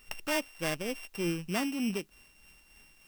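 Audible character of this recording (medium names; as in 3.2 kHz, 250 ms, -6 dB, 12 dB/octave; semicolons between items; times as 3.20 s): a buzz of ramps at a fixed pitch in blocks of 16 samples; tremolo triangle 3.3 Hz, depth 50%; a quantiser's noise floor 12-bit, dither triangular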